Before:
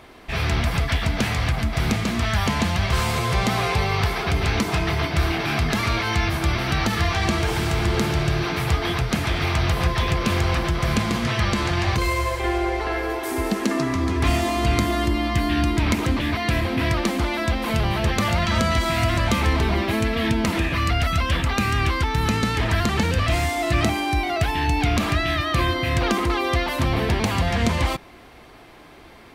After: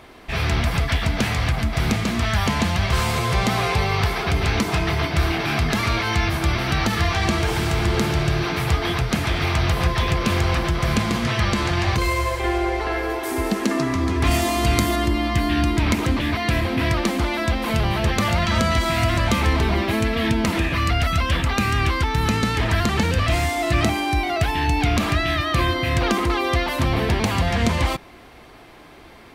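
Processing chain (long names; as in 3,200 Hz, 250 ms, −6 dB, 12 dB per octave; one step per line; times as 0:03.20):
0:14.31–0:14.96: high-shelf EQ 6,200 Hz +8.5 dB
level +1 dB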